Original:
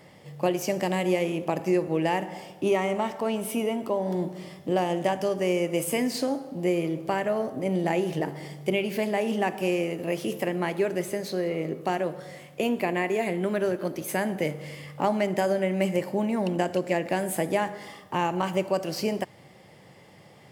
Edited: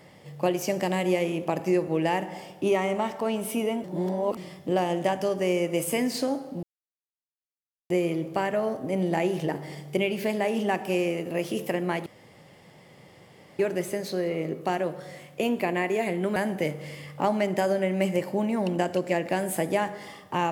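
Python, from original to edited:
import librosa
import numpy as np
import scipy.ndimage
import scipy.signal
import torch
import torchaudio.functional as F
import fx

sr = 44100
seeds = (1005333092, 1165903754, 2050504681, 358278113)

y = fx.edit(x, sr, fx.reverse_span(start_s=3.84, length_s=0.53),
    fx.insert_silence(at_s=6.63, length_s=1.27),
    fx.insert_room_tone(at_s=10.79, length_s=1.53),
    fx.cut(start_s=13.56, length_s=0.6), tone=tone)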